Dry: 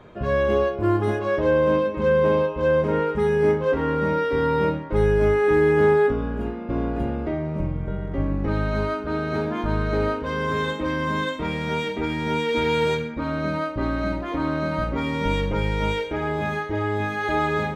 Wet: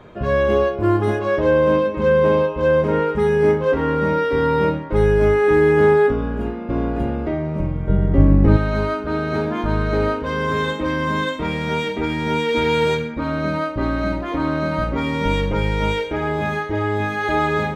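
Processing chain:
0:07.89–0:08.57: low-shelf EQ 470 Hz +9.5 dB
level +3.5 dB

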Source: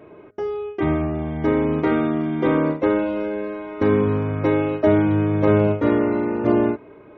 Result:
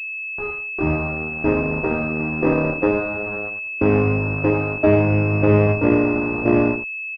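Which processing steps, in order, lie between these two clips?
0:01.61–0:02.20: notch comb filter 290 Hz
harmonic generator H 5 −32 dB, 7 −16 dB, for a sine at −5 dBFS
in parallel at −8 dB: fuzz pedal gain 39 dB, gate −41 dBFS
on the sum: low-shelf EQ 71 Hz +7 dB
on a send: single-tap delay 85 ms −9 dB
on the sum: switching amplifier with a slow clock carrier 2,600 Hz
level −1.5 dB

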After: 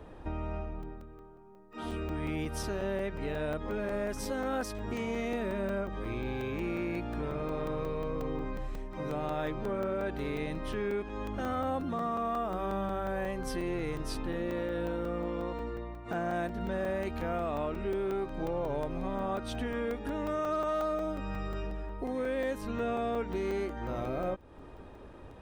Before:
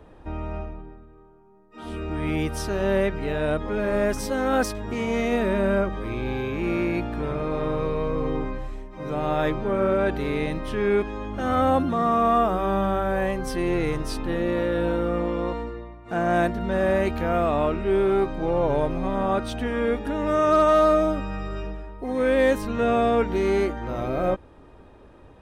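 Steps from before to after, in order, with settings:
downward compressor 3 to 1, threshold −34 dBFS, peak gain reduction 14 dB
regular buffer underruns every 0.18 s, samples 128, zero, from 0:00.83

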